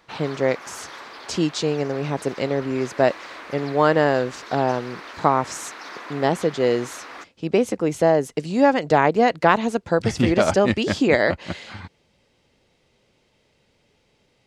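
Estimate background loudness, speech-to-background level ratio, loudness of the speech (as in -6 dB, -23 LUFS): -38.0 LUFS, 16.5 dB, -21.5 LUFS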